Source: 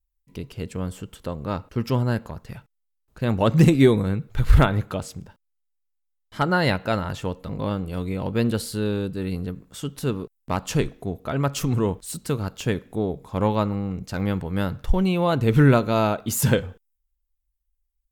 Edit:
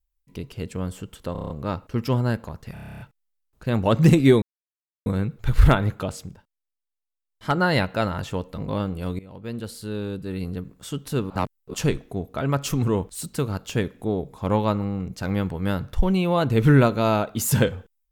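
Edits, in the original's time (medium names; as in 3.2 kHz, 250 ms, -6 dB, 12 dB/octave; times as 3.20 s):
1.32 s: stutter 0.03 s, 7 plays
2.55 s: stutter 0.03 s, 10 plays
3.97 s: insert silence 0.64 s
5.15–6.40 s: dip -9.5 dB, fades 0.24 s
8.10–9.64 s: fade in, from -19 dB
10.21–10.65 s: reverse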